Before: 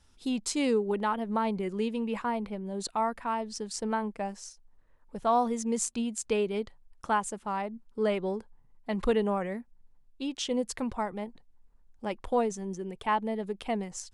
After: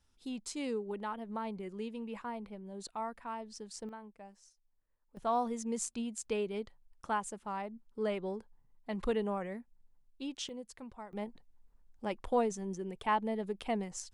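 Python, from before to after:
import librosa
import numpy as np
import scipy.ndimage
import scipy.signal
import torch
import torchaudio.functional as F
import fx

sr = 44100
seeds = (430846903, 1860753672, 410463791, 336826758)

y = fx.gain(x, sr, db=fx.steps((0.0, -10.0), (3.89, -18.0), (5.17, -6.5), (10.49, -15.5), (11.13, -3.0)))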